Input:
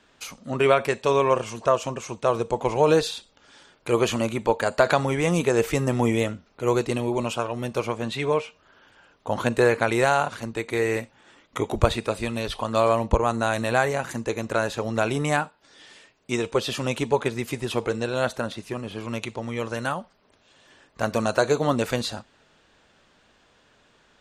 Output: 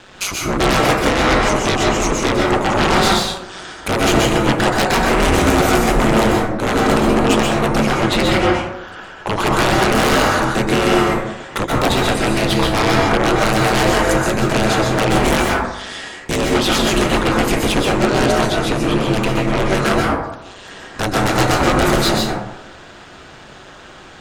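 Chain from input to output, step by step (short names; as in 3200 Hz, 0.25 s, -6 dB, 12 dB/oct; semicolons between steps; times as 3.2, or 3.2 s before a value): ring modulator 97 Hz; in parallel at +3 dB: compressor, threshold -34 dBFS, peak gain reduction 18.5 dB; on the sum: sine folder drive 20 dB, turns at -1.5 dBFS; plate-style reverb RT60 0.89 s, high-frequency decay 0.35×, pre-delay 0.115 s, DRR -2 dB; gain -12 dB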